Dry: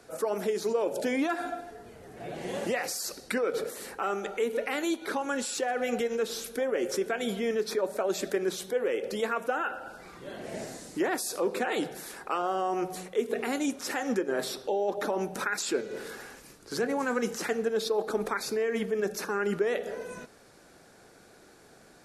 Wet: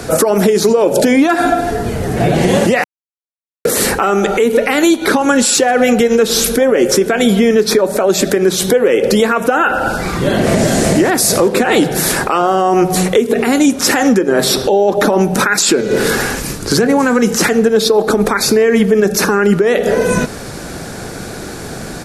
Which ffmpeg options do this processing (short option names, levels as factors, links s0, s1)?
-filter_complex "[0:a]asplit=2[s0][s1];[s1]afade=t=in:st=10.08:d=0.01,afade=t=out:st=10.72:d=0.01,aecho=0:1:380|760|1140|1520|1900|2280|2660|3040:0.891251|0.490188|0.269603|0.148282|0.081555|0.0448553|0.0246704|0.0135687[s2];[s0][s2]amix=inputs=2:normalize=0,asplit=3[s3][s4][s5];[s3]atrim=end=2.84,asetpts=PTS-STARTPTS,afade=t=out:st=2.836:d=0.004:c=hsin[s6];[s4]atrim=start=2.84:end=3.65,asetpts=PTS-STARTPTS,volume=0[s7];[s5]atrim=start=3.65,asetpts=PTS-STARTPTS,afade=t=in:d=0.004:c=hsin[s8];[s6][s7][s8]concat=n=3:v=0:a=1,bass=f=250:g=9,treble=f=4000:g=2,acompressor=threshold=0.0178:ratio=6,alimiter=level_in=25.1:limit=0.891:release=50:level=0:latency=1,volume=0.891"